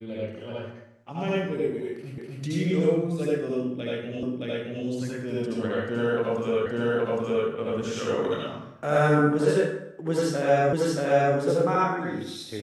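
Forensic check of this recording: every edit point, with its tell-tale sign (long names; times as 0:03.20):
0:02.18: the same again, the last 0.25 s
0:04.23: the same again, the last 0.62 s
0:06.66: the same again, the last 0.82 s
0:10.73: the same again, the last 0.63 s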